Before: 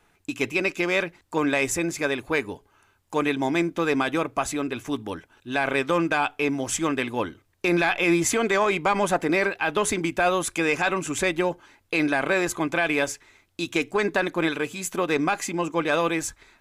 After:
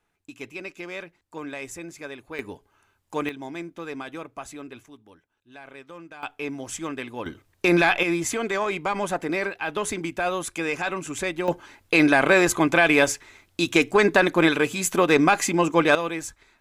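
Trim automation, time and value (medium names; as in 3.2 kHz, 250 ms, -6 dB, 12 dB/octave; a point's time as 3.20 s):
-12 dB
from 2.39 s -3.5 dB
from 3.29 s -11.5 dB
from 4.86 s -20 dB
from 6.23 s -7 dB
from 7.26 s +3 dB
from 8.03 s -4 dB
from 11.48 s +5.5 dB
from 15.95 s -4.5 dB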